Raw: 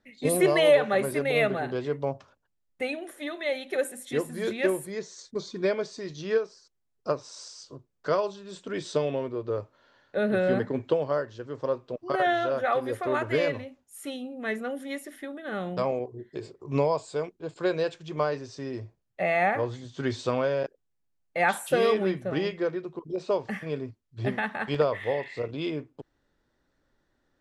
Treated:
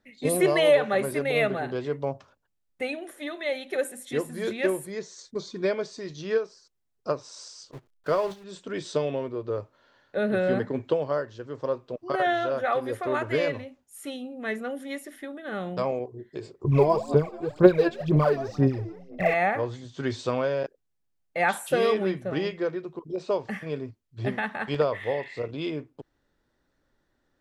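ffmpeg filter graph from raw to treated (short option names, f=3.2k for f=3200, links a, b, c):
-filter_complex "[0:a]asettb=1/sr,asplit=3[a][b][c];[a]atrim=end=7.714[d];[b]atrim=start=7.71:end=8.44,asetpts=PTS-STARTPTS,afade=t=in:d=0.004:c=qsin,afade=t=out:st=0.726:d=0.004:c=qsin,aeval=exprs='val(0)+0.5*0.0178*sgn(val(0))':c=same,highshelf=f=5.8k:g=-9,agate=range=-25dB:threshold=-37dB:ratio=16:release=100:detection=peak[e];[c]atrim=start=8.436[f];[d][e]acrossfade=d=0.004:c1=hsin:c2=qsin[g];[g][f]acrossfade=d=0.004:c1=qsin:c2=hsin,asettb=1/sr,asplit=3[h][i][j];[h]atrim=end=16.644[k];[i]atrim=start=16.64:end=19.34,asetpts=PTS-STARTPTS,afade=t=in:d=0.004:c=qsin,afade=t=out:st=2.696:d=0.004:c=qsin,aemphasis=mode=reproduction:type=bsi,asplit=5[l][m][n][o][p];[m]adelay=173,afreqshift=71,volume=-17dB[q];[n]adelay=346,afreqshift=142,volume=-24.3dB[r];[o]adelay=519,afreqshift=213,volume=-31.7dB[s];[p]adelay=692,afreqshift=284,volume=-39dB[t];[l][q][r][s][t]amix=inputs=5:normalize=0,atrim=end_sample=119070,aphaser=in_gain=1:out_gain=1:delay=3:decay=0.75:speed=2:type=sinusoidal[u];[j]atrim=start=19.336[v];[k][u]acrossfade=d=0.004:c1=hsin:c2=qsin[w];[w][v]acrossfade=d=0.004:c1=qsin:c2=hsin"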